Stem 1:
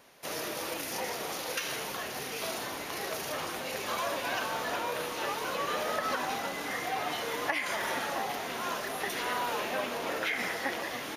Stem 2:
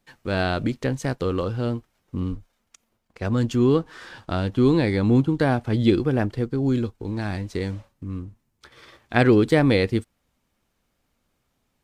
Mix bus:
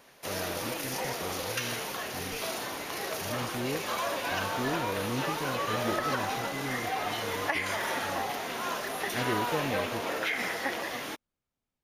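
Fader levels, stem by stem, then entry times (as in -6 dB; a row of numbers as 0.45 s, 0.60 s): +1.0 dB, -16.5 dB; 0.00 s, 0.00 s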